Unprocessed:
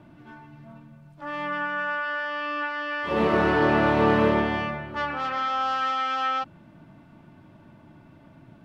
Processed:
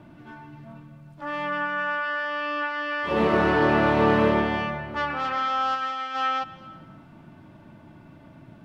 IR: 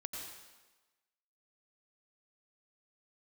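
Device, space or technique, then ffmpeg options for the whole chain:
compressed reverb return: -filter_complex "[0:a]asplit=2[link_01][link_02];[1:a]atrim=start_sample=2205[link_03];[link_02][link_03]afir=irnorm=-1:irlink=0,acompressor=threshold=-34dB:ratio=6,volume=-6dB[link_04];[link_01][link_04]amix=inputs=2:normalize=0,asplit=3[link_05][link_06][link_07];[link_05]afade=type=out:start_time=5.74:duration=0.02[link_08];[link_06]agate=range=-33dB:threshold=-20dB:ratio=3:detection=peak,afade=type=in:start_time=5.74:duration=0.02,afade=type=out:start_time=6.14:duration=0.02[link_09];[link_07]afade=type=in:start_time=6.14:duration=0.02[link_10];[link_08][link_09][link_10]amix=inputs=3:normalize=0"

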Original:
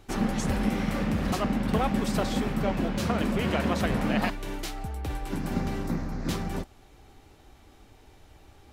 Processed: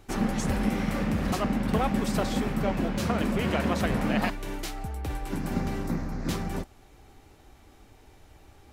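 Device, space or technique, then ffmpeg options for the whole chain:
exciter from parts: -filter_complex "[0:a]asplit=2[link_01][link_02];[link_02]highpass=2300,asoftclip=type=tanh:threshold=-38.5dB,highpass=frequency=2400:width=0.5412,highpass=frequency=2400:width=1.3066,volume=-13.5dB[link_03];[link_01][link_03]amix=inputs=2:normalize=0"

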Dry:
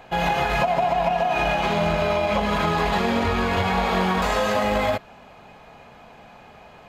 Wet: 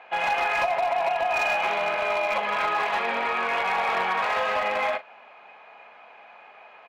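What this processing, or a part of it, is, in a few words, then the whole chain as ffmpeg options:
megaphone: -filter_complex "[0:a]highpass=690,lowpass=2500,equalizer=frequency=2400:width_type=o:width=0.4:gain=6,asoftclip=type=hard:threshold=-19dB,asplit=2[link_01][link_02];[link_02]adelay=39,volume=-13dB[link_03];[link_01][link_03]amix=inputs=2:normalize=0"

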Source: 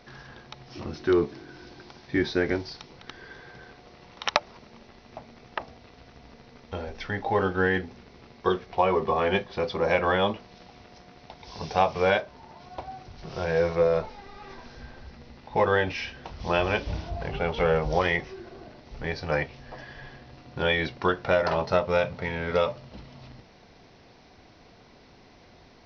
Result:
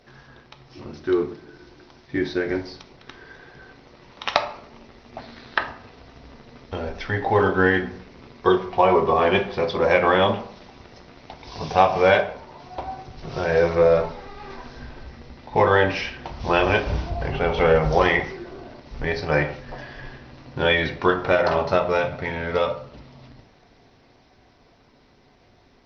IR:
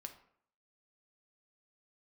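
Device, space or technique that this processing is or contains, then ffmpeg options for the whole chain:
speakerphone in a meeting room: -filter_complex "[0:a]asettb=1/sr,asplit=3[link_01][link_02][link_03];[link_01]atrim=end=5.184[link_04];[link_02]atrim=start=5.18:end=5.63,asetpts=PTS-STARTPTS,afade=type=in:duration=0.004:curve=qsin,afade=type=out:start_time=0.446:duration=0.004:curve=qsin,equalizer=frequency=250:width_type=o:width=0.67:gain=3,equalizer=frequency=1600:width_type=o:width=0.67:gain=10,equalizer=frequency=4000:width_type=o:width=0.67:gain=12[link_05];[link_03]atrim=start=5.626[link_06];[link_04][link_05]acrossfade=duration=0.004:curve1=hsin:curve2=qsin[link_07];[link_07][link_06]acrossfade=duration=0.004:curve1=qsin:curve2=hsin[link_08];[1:a]atrim=start_sample=2205[link_09];[link_08][link_09]afir=irnorm=-1:irlink=0,dynaudnorm=framelen=370:gausssize=21:maxgain=7.5dB,volume=4dB" -ar 48000 -c:a libopus -b:a 20k

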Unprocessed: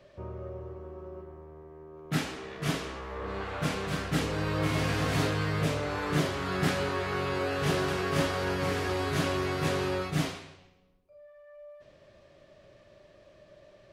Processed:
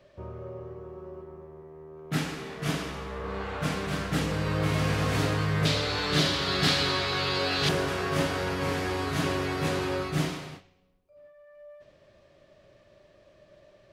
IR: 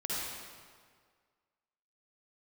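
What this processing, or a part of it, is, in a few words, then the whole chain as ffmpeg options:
keyed gated reverb: -filter_complex "[0:a]asplit=3[link_01][link_02][link_03];[1:a]atrim=start_sample=2205[link_04];[link_02][link_04]afir=irnorm=-1:irlink=0[link_05];[link_03]apad=whole_len=614183[link_06];[link_05][link_06]sidechaingate=range=-33dB:threshold=-52dB:ratio=16:detection=peak,volume=-9.5dB[link_07];[link_01][link_07]amix=inputs=2:normalize=0,asettb=1/sr,asplit=3[link_08][link_09][link_10];[link_08]atrim=end=5.654[link_11];[link_09]atrim=start=5.65:end=7.69,asetpts=PTS-STARTPTS,afade=type=in:duration=0.004:curve=qsin,afade=type=out:start_time=2.036:duration=0.004:curve=qsin,equalizer=frequency=4100:width_type=o:width=1.1:gain=15[link_12];[link_10]atrim=start=7.686[link_13];[link_11][link_12]acrossfade=duration=0.004:curve1=hsin:curve2=qsin[link_14];[link_14][link_13]acrossfade=duration=0.004:curve1=qsin:curve2=hsin,volume=-1.5dB"

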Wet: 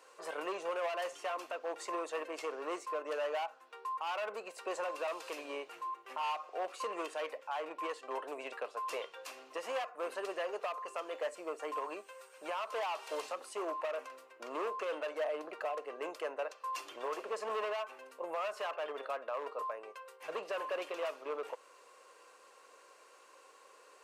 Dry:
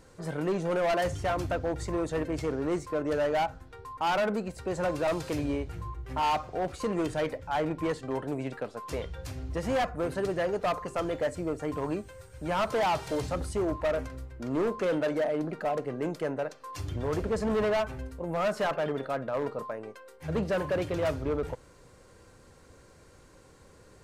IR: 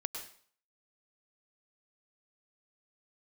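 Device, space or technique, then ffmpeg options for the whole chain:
laptop speaker: -af "highpass=frequency=450:width=0.5412,highpass=frequency=450:width=1.3066,equalizer=frequency=1100:width_type=o:width=0.26:gain=9.5,equalizer=frequency=2700:width_type=o:width=0.27:gain=9,alimiter=level_in=2dB:limit=-24dB:level=0:latency=1:release=377,volume=-2dB,volume=-2.5dB"

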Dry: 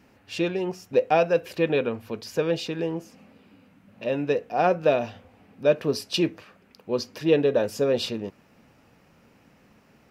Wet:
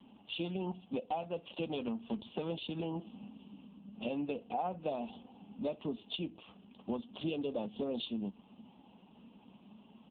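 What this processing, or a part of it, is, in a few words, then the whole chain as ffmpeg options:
voicemail: -af "highpass=420,lowpass=3300,firequalizer=gain_entry='entry(120,0);entry(200,12);entry(350,-9);entry(500,-14);entry(820,-2);entry(1900,-27);entry(2900,1);entry(4200,4);entry(8700,-19)':delay=0.05:min_phase=1,acompressor=threshold=-41dB:ratio=8,volume=8.5dB" -ar 8000 -c:a libopencore_amrnb -b:a 5150

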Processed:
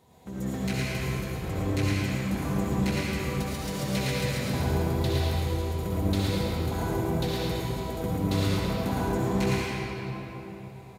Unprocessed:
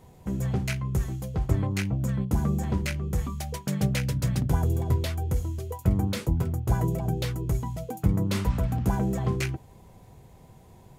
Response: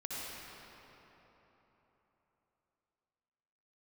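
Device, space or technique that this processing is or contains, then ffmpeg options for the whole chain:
PA in a hall: -filter_complex "[0:a]highpass=frequency=200:poles=1,equalizer=frequency=3900:width_type=o:width=0.36:gain=6.5,aecho=1:1:112:0.631[link_01];[1:a]atrim=start_sample=2205[link_02];[link_01][link_02]afir=irnorm=-1:irlink=0"

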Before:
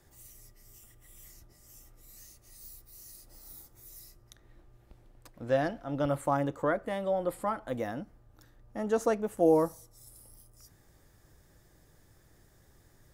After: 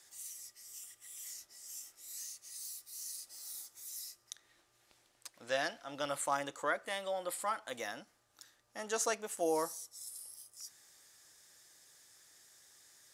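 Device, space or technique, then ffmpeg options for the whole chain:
piezo pickup straight into a mixer: -filter_complex "[0:a]lowpass=7300,aderivative,asettb=1/sr,asplit=3[link_01][link_02][link_03];[link_01]atrim=end=1.244[link_04];[link_02]atrim=start=1.24:end=2.22,asetpts=PTS-STARTPTS,afade=type=in:duration=0.004:curve=qsin,afade=type=out:start_time=0.976:duration=0.004:curve=qsin,asplit=2[link_05][link_06];[link_06]adelay=22,volume=-5dB[link_07];[link_05][link_07]amix=inputs=2:normalize=0,atrim=end_sample=43218[link_08];[link_03]atrim=start=2.216[link_09];[link_04][link_08]acrossfade=duration=0.004:curve1=hsin:curve2=qsin[link_10];[link_10][link_09]acrossfade=duration=0.004:curve1=qsin:curve2=hsin,volume=13.5dB"

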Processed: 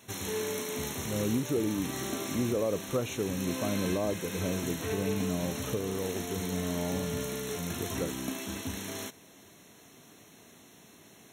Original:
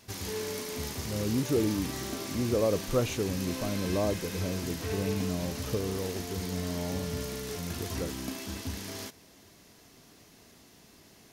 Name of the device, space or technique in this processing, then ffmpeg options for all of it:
PA system with an anti-feedback notch: -af "highpass=110,asuperstop=centerf=4800:order=20:qfactor=4.3,alimiter=limit=-21.5dB:level=0:latency=1:release=479,volume=2dB"

